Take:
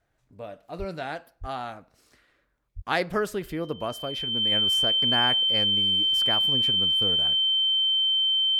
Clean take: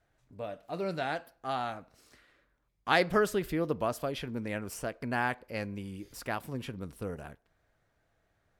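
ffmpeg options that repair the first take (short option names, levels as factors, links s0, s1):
-filter_complex "[0:a]bandreject=f=3100:w=30,asplit=3[s0][s1][s2];[s0]afade=t=out:st=0.78:d=0.02[s3];[s1]highpass=f=140:w=0.5412,highpass=f=140:w=1.3066,afade=t=in:st=0.78:d=0.02,afade=t=out:st=0.9:d=0.02[s4];[s2]afade=t=in:st=0.9:d=0.02[s5];[s3][s4][s5]amix=inputs=3:normalize=0,asplit=3[s6][s7][s8];[s6]afade=t=out:st=1.4:d=0.02[s9];[s7]highpass=f=140:w=0.5412,highpass=f=140:w=1.3066,afade=t=in:st=1.4:d=0.02,afade=t=out:st=1.52:d=0.02[s10];[s8]afade=t=in:st=1.52:d=0.02[s11];[s9][s10][s11]amix=inputs=3:normalize=0,asplit=3[s12][s13][s14];[s12]afade=t=out:st=2.75:d=0.02[s15];[s13]highpass=f=140:w=0.5412,highpass=f=140:w=1.3066,afade=t=in:st=2.75:d=0.02,afade=t=out:st=2.87:d=0.02[s16];[s14]afade=t=in:st=2.87:d=0.02[s17];[s15][s16][s17]amix=inputs=3:normalize=0,asetnsamples=n=441:p=0,asendcmd='4.52 volume volume -3.5dB',volume=1"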